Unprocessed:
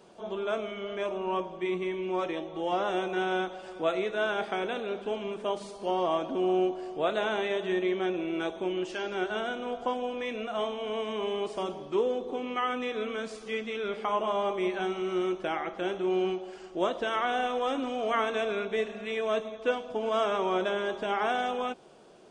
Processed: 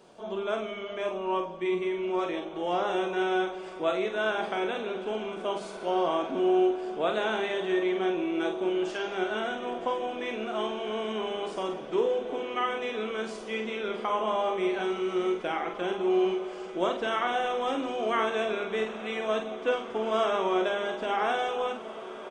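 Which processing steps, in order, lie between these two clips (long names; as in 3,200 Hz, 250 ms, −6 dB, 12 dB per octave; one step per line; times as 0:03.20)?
mains-hum notches 50/100/150/200/250 Hz
double-tracking delay 46 ms −6 dB
feedback delay with all-pass diffusion 1,833 ms, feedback 64%, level −14.5 dB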